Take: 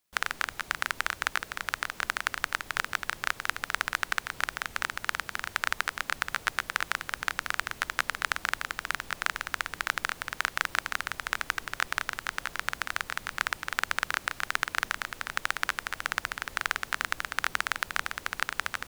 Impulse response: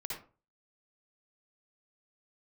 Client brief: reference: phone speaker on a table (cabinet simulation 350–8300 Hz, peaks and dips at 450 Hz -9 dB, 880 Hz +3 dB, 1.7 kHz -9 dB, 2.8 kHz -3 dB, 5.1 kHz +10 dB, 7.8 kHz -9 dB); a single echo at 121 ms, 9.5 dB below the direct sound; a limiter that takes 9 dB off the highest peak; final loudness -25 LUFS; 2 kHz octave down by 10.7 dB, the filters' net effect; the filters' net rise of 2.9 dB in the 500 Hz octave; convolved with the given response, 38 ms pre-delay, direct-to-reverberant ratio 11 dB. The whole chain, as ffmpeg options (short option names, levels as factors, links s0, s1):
-filter_complex "[0:a]equalizer=f=500:t=o:g=8,equalizer=f=2000:t=o:g=-8.5,alimiter=limit=0.188:level=0:latency=1,aecho=1:1:121:0.335,asplit=2[s0][s1];[1:a]atrim=start_sample=2205,adelay=38[s2];[s1][s2]afir=irnorm=-1:irlink=0,volume=0.266[s3];[s0][s3]amix=inputs=2:normalize=0,highpass=f=350:w=0.5412,highpass=f=350:w=1.3066,equalizer=f=450:t=q:w=4:g=-9,equalizer=f=880:t=q:w=4:g=3,equalizer=f=1700:t=q:w=4:g=-9,equalizer=f=2800:t=q:w=4:g=-3,equalizer=f=5100:t=q:w=4:g=10,equalizer=f=7800:t=q:w=4:g=-9,lowpass=f=8300:w=0.5412,lowpass=f=8300:w=1.3066,volume=5.62"